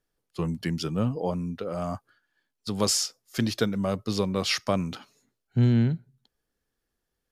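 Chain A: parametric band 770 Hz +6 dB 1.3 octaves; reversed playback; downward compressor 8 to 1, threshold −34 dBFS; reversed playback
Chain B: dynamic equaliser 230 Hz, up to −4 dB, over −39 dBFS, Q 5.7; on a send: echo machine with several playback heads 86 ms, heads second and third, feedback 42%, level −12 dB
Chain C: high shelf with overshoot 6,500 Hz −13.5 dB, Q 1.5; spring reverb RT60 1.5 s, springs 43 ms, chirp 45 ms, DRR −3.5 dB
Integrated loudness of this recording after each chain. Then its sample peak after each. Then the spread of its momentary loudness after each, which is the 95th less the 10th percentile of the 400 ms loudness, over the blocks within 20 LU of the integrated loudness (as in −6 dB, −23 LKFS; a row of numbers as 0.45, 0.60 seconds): −38.5, −28.0, −23.5 LKFS; −23.0, −11.5, −7.5 dBFS; 8, 17, 17 LU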